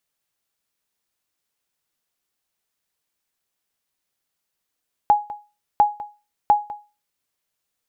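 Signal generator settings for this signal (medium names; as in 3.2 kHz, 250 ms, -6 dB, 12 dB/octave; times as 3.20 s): sonar ping 832 Hz, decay 0.30 s, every 0.70 s, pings 3, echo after 0.20 s, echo -17 dB -7 dBFS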